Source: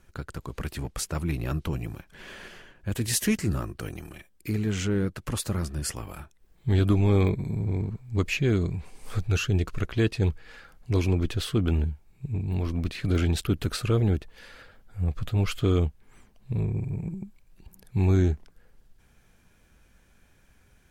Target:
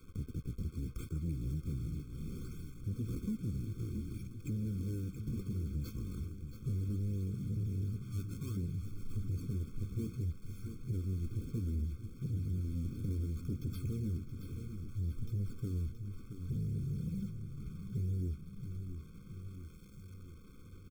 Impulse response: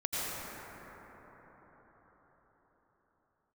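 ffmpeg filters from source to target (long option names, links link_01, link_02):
-filter_complex "[0:a]acrossover=split=330[link_01][link_02];[link_01]agate=range=-33dB:threshold=-59dB:ratio=3:detection=peak[link_03];[link_02]acompressor=mode=upward:threshold=-53dB:ratio=2.5[link_04];[link_03][link_04]amix=inputs=2:normalize=0,flanger=delay=9.4:depth=4.9:regen=-43:speed=0.26:shape=sinusoidal,acrusher=samples=23:mix=1:aa=0.000001:lfo=1:lforange=36.8:lforate=0.64,asettb=1/sr,asplit=3[link_05][link_06][link_07];[link_05]atrim=end=8.074[link_08];[link_06]atrim=start=8.07:end=8.57,asetpts=PTS-STARTPTS,afade=type=in:duration=0.004:curve=qsin,afade=type=out:start_time=0.496:duration=0.004:curve=qsin,lowshelf=frequency=550:width_type=q:width=1.5:gain=-8.5[link_09];[link_07]atrim=start=8.566[link_10];[link_08][link_09]acrossfade=duration=0.004:curve1=hsin:curve2=qsin[link_11];[link_11][link_10]acrossfade=duration=0.004:curve1=qsin:curve2=hsin,acompressor=threshold=-41dB:ratio=4,firequalizer=gain_entry='entry(240,0);entry(580,-21);entry(7200,-7)':delay=0.05:min_phase=1,acrusher=bits=10:mix=0:aa=0.000001,aecho=1:1:674|1348|2022|2696|3370|4044|4718:0.316|0.183|0.106|0.0617|0.0358|0.0208|0.012,asoftclip=type=tanh:threshold=-37dB,afftfilt=real='re*eq(mod(floor(b*sr/1024/520),2),0)':imag='im*eq(mod(floor(b*sr/1024/520),2),0)':win_size=1024:overlap=0.75,volume=7.5dB"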